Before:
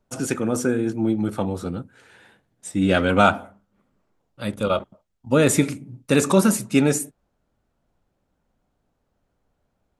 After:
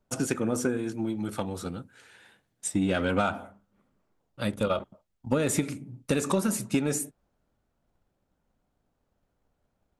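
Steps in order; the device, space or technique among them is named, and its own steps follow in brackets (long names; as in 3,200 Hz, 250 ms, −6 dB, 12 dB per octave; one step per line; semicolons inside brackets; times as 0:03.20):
drum-bus smash (transient designer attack +6 dB, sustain +2 dB; downward compressor 6 to 1, threshold −16 dBFS, peak gain reduction 8.5 dB; soft clipping −9.5 dBFS, distortion −21 dB)
0:00.77–0:02.73: tilt shelving filter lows −4 dB, about 1,500 Hz
level −4.5 dB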